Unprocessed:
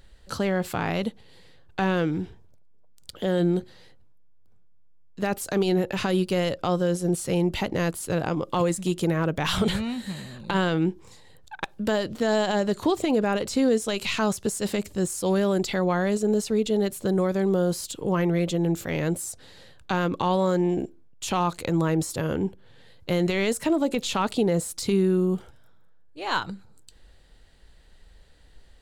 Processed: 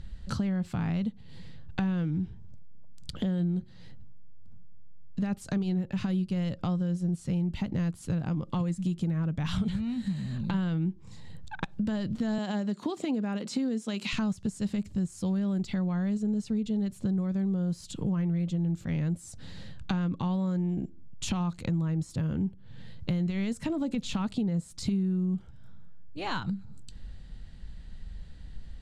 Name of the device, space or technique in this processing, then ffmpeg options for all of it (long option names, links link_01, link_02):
jukebox: -filter_complex "[0:a]asettb=1/sr,asplit=3[link_01][link_02][link_03];[link_01]atrim=end=12.384[link_04];[link_02]atrim=start=12.38:end=14.13,asetpts=PTS-STARTPTS,afade=type=in:duration=0.004:curve=qsin,afade=type=out:start_time=1.746:duration=0.004:curve=qsin,highpass=frequency=210:width=0.5412,highpass=frequency=210:width=1.3066[link_05];[link_03]atrim=start=14.126[link_06];[link_04][link_05]acrossfade=duration=0.004:curve1=hsin:curve2=qsin[link_07];[link_07][link_06]acrossfade=duration=0.004:curve1=qsin:curve2=hsin,lowpass=7800,lowshelf=frequency=280:width_type=q:width=1.5:gain=11.5,acompressor=threshold=-30dB:ratio=4"